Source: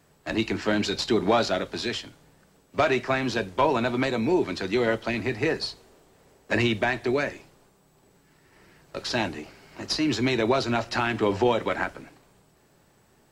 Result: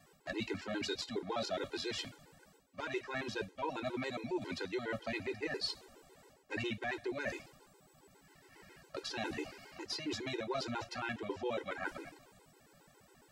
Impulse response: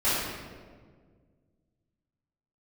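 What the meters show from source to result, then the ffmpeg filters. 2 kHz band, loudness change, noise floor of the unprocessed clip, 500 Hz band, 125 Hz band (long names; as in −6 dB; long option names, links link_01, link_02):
−12.5 dB, −14.0 dB, −62 dBFS, −14.5 dB, −16.5 dB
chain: -af "lowshelf=frequency=260:gain=-5.5,areverse,acompressor=threshold=-35dB:ratio=6,areverse,afftfilt=real='re*gt(sin(2*PI*7.3*pts/sr)*(1-2*mod(floor(b*sr/1024/270),2)),0)':imag='im*gt(sin(2*PI*7.3*pts/sr)*(1-2*mod(floor(b*sr/1024/270),2)),0)':win_size=1024:overlap=0.75,volume=2dB"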